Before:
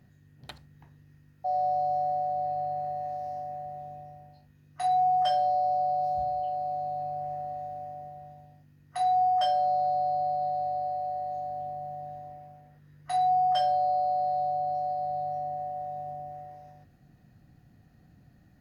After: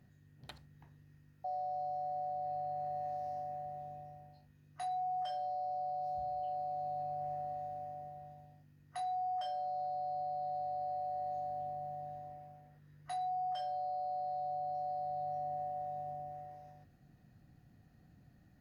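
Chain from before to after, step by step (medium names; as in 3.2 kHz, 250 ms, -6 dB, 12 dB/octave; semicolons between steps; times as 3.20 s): peak limiter -28 dBFS, peak gain reduction 11 dB; trim -5 dB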